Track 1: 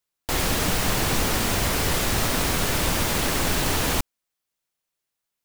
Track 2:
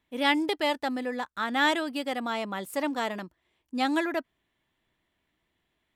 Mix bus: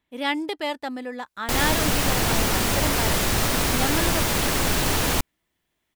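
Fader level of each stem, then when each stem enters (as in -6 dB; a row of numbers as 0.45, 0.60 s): +1.0, -1.0 dB; 1.20, 0.00 s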